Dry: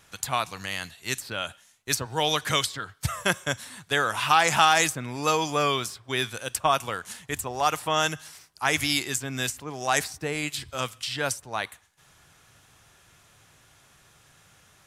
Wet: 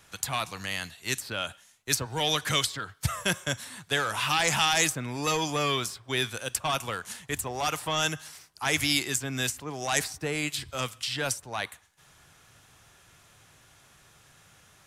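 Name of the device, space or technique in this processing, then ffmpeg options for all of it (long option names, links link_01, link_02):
one-band saturation: -filter_complex "[0:a]acrossover=split=320|2100[link_01][link_02][link_03];[link_02]asoftclip=type=tanh:threshold=-27dB[link_04];[link_01][link_04][link_03]amix=inputs=3:normalize=0"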